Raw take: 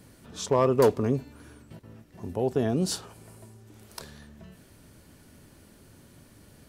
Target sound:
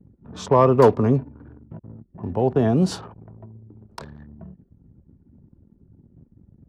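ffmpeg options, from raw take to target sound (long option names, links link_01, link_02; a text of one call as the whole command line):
ffmpeg -i in.wav -filter_complex "[0:a]aemphasis=mode=reproduction:type=50fm,anlmdn=0.0251,highpass=frequency=95:poles=1,equalizer=frequency=930:width_type=o:width=1.2:gain=6,acrossover=split=220|540|4000[link_01][link_02][link_03][link_04];[link_01]acontrast=88[link_05];[link_05][link_02][link_03][link_04]amix=inputs=4:normalize=0,volume=3.5dB" out.wav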